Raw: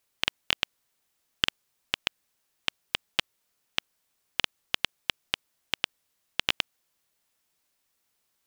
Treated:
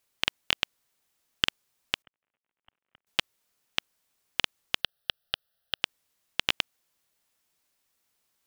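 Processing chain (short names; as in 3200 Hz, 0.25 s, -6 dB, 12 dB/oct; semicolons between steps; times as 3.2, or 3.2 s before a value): 2.02–3.07 CVSD 16 kbps; 4.81–5.82 fixed phaser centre 1500 Hz, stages 8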